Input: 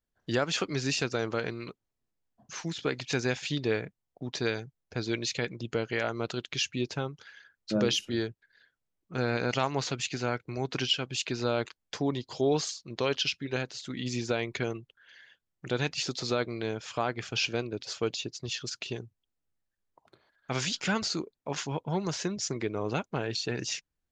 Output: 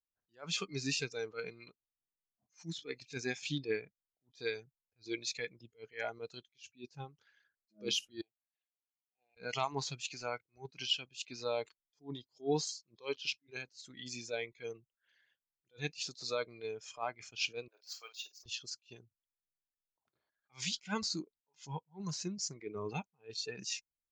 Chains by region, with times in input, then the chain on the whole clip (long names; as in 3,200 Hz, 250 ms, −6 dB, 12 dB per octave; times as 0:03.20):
0:08.21–0:09.37: downward compressor 20 to 1, threshold −41 dBFS + pair of resonant band-passes 1,400 Hz, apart 1.8 octaves
0:17.68–0:18.46: high-pass filter 660 Hz 24 dB per octave + flutter between parallel walls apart 8.9 metres, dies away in 0.27 s + linearly interpolated sample-rate reduction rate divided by 2×
whole clip: noise reduction from a noise print of the clip's start 14 dB; level that may rise only so fast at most 290 dB per second; level −4.5 dB